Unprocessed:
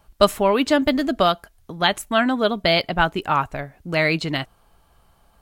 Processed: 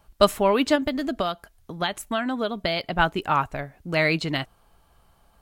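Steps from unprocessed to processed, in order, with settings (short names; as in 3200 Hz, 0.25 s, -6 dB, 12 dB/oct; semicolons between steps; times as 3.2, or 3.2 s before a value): 0.75–2.99 compressor, threshold -20 dBFS, peak gain reduction 8 dB; gain -2 dB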